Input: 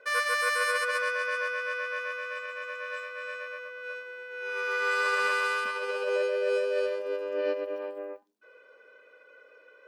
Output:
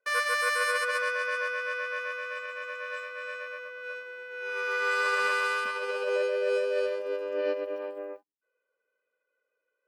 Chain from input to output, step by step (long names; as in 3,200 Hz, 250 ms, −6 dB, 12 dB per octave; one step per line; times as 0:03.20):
noise gate −46 dBFS, range −26 dB